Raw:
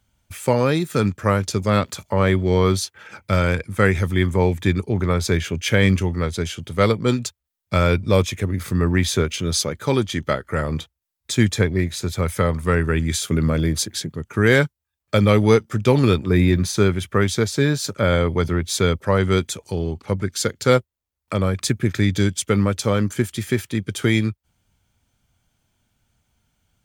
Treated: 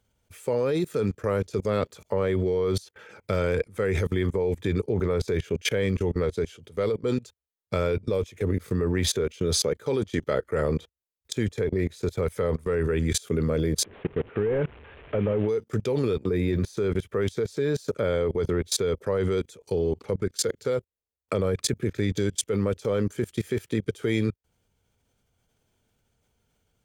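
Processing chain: 13.84–15.49 s: one-bit delta coder 16 kbps, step -28.5 dBFS; peaking EQ 450 Hz +12.5 dB 0.6 oct; level held to a coarse grid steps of 24 dB

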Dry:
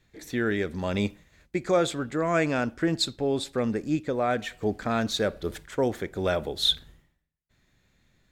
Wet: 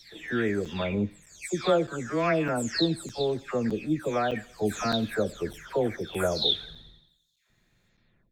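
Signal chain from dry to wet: delay that grows with frequency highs early, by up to 428 ms; on a send: feedback echo behind a high-pass 88 ms, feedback 59%, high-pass 2.6 kHz, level -17 dB; on the sum: crackling interface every 0.61 s, samples 256, zero, from 0.65 s

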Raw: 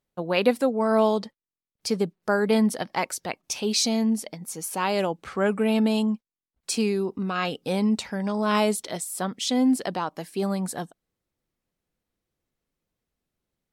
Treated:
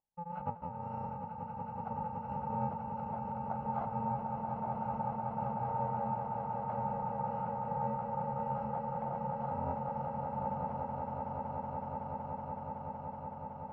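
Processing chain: bit-reversed sample order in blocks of 128 samples; in parallel at -3 dB: level held to a coarse grid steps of 18 dB; on the sum: four-pole ladder low-pass 910 Hz, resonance 80%; bass shelf 63 Hz -7.5 dB; echo with a slow build-up 187 ms, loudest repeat 8, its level -7 dB

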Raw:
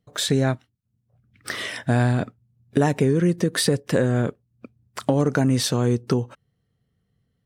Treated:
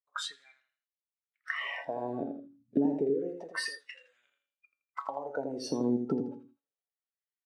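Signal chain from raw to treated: distance through air 79 m; feedback comb 140 Hz, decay 0.42 s, harmonics all, mix 70%; compression 5:1, threshold -32 dBFS, peak gain reduction 12 dB; LFO high-pass sine 0.29 Hz 240–2700 Hz; on a send: feedback delay 82 ms, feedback 35%, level -6 dB; on the sum: spectral noise reduction 20 dB; trim +2 dB

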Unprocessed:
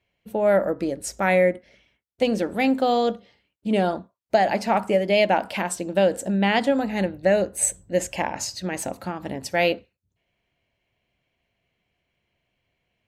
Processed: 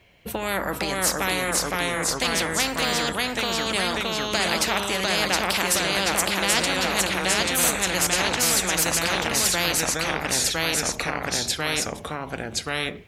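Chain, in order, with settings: ever faster or slower copies 442 ms, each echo -1 st, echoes 3; spectrum-flattening compressor 4:1

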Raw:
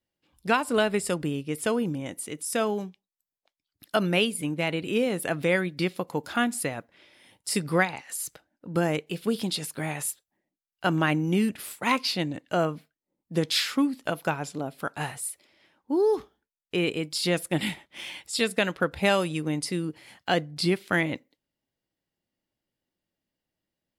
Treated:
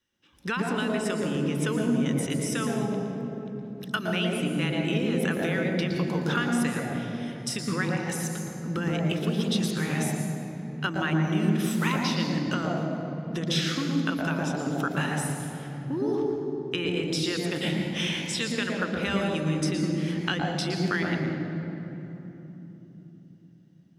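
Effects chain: peaking EQ 6.4 kHz +8.5 dB 0.35 oct; compression, threshold -34 dBFS, peak gain reduction 16 dB; reverberation RT60 3.4 s, pre-delay 114 ms, DRR 2 dB; trim -1 dB

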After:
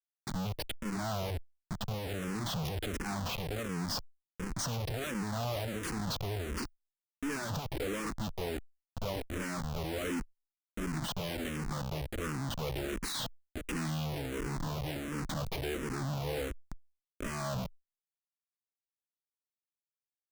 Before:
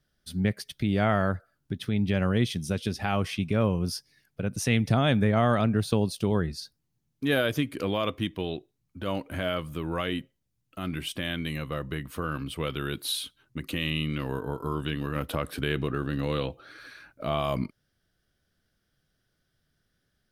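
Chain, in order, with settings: Schmitt trigger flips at -36.5 dBFS; barber-pole phaser -1.4 Hz; trim -3 dB

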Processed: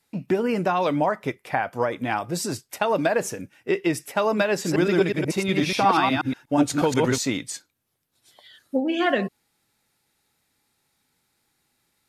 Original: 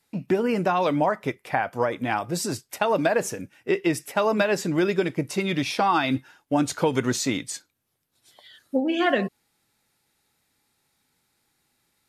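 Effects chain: 4.52–7.18 s: chunks repeated in reverse 121 ms, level -1.5 dB

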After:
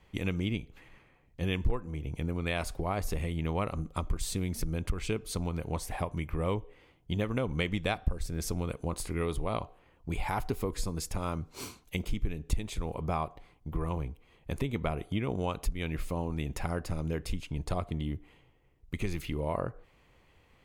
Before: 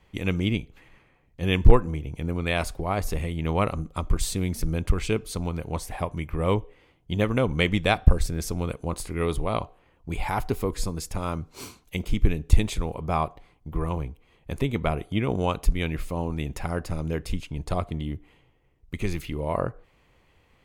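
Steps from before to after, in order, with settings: compression 3:1, threshold -27 dBFS, peak gain reduction 15.5 dB; trim -1.5 dB

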